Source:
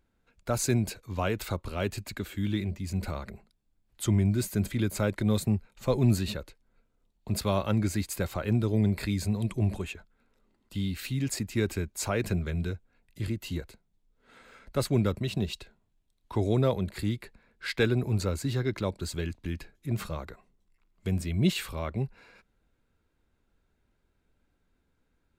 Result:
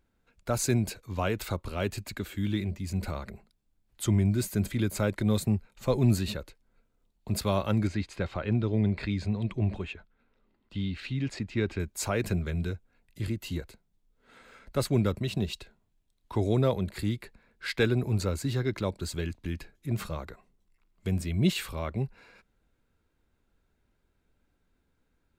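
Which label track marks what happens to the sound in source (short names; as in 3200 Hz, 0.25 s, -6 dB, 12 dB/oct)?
7.870000	11.800000	Chebyshev low-pass 3300 Hz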